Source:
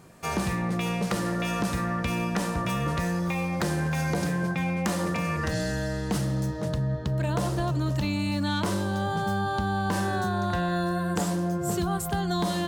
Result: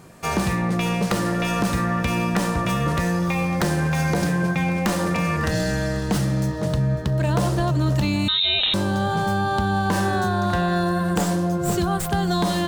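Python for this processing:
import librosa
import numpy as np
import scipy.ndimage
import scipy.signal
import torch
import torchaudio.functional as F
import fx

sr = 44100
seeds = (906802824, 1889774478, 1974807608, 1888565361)

y = fx.tracing_dist(x, sr, depth_ms=0.09)
y = fx.echo_feedback(y, sr, ms=551, feedback_pct=57, wet_db=-18)
y = fx.freq_invert(y, sr, carrier_hz=3900, at=(8.28, 8.74))
y = y * 10.0 ** (5.5 / 20.0)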